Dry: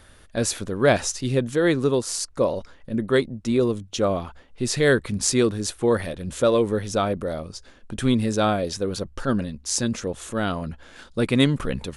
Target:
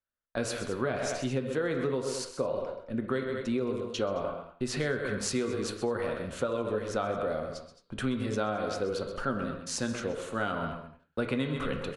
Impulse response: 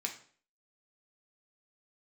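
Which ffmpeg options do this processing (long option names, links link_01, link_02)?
-filter_complex "[0:a]agate=range=-41dB:threshold=-38dB:ratio=16:detection=peak,highshelf=frequency=3900:gain=-9.5,aecho=1:1:129|217:0.237|0.178,acrossover=split=290[link_01][link_02];[link_02]acompressor=threshold=-20dB:ratio=6[link_03];[link_01][link_03]amix=inputs=2:normalize=0,asplit=2[link_04][link_05];[link_05]bass=frequency=250:gain=-13,treble=frequency=4000:gain=-7[link_06];[1:a]atrim=start_sample=2205,afade=type=out:start_time=0.17:duration=0.01,atrim=end_sample=7938,asetrate=26460,aresample=44100[link_07];[link_06][link_07]afir=irnorm=-1:irlink=0,volume=0.5dB[link_08];[link_04][link_08]amix=inputs=2:normalize=0,acompressor=threshold=-19dB:ratio=6,volume=-7.5dB"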